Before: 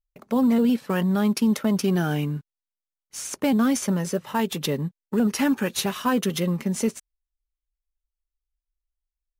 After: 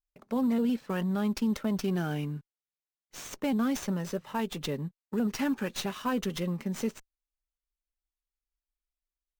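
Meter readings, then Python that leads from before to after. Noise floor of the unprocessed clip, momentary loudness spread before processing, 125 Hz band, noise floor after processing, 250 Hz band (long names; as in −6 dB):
below −85 dBFS, 7 LU, −7.5 dB, below −85 dBFS, −7.5 dB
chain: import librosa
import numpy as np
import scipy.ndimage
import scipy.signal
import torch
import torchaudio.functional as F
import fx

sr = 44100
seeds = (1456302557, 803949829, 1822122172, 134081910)

y = fx.running_max(x, sr, window=3)
y = y * 10.0 ** (-7.5 / 20.0)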